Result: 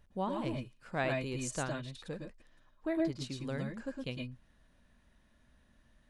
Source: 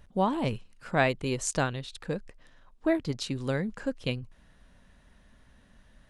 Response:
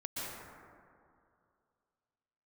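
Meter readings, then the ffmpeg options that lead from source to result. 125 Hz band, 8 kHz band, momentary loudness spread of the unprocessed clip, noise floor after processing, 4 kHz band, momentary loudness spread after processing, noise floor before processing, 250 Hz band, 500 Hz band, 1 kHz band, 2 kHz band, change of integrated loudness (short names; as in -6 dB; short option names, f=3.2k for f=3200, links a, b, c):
-7.0 dB, -8.0 dB, 11 LU, -68 dBFS, -8.0 dB, 11 LU, -60 dBFS, -6.0 dB, -7.0 dB, -8.5 dB, -8.0 dB, -7.0 dB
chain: -filter_complex "[1:a]atrim=start_sample=2205,afade=t=out:st=0.18:d=0.01,atrim=end_sample=8379,asetrate=48510,aresample=44100[a];[0:a][a]afir=irnorm=-1:irlink=0,volume=-3.5dB"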